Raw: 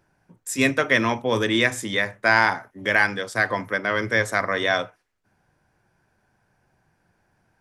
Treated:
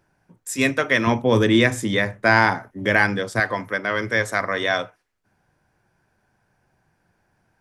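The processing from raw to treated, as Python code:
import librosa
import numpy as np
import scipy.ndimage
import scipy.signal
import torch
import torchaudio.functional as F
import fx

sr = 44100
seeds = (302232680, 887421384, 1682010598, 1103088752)

y = fx.low_shelf(x, sr, hz=450.0, db=9.5, at=(1.07, 3.4))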